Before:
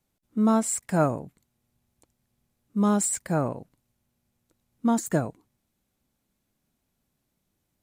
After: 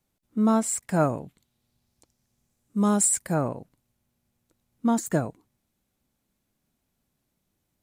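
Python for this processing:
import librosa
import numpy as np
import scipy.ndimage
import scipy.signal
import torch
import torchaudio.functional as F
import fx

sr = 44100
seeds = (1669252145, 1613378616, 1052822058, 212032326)

y = fx.peak_eq(x, sr, hz=fx.line((1.13, 2900.0), (3.33, 12000.0)), db=8.0, octaves=0.78, at=(1.13, 3.33), fade=0.02)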